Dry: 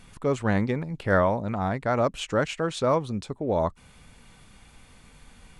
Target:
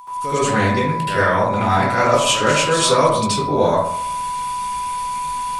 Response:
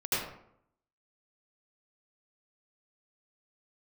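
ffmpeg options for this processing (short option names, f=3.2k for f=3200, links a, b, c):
-filter_complex "[0:a]dynaudnorm=f=100:g=3:m=16dB,aeval=exprs='0.944*(cos(1*acos(clip(val(0)/0.944,-1,1)))-cos(1*PI/2))+0.0596*(cos(2*acos(clip(val(0)/0.944,-1,1)))-cos(2*PI/2))':c=same,aeval=exprs='val(0)+0.0891*sin(2*PI*990*n/s)':c=same,crystalizer=i=8:c=0[a];[1:a]atrim=start_sample=2205[b];[a][b]afir=irnorm=-1:irlink=0,volume=-15dB"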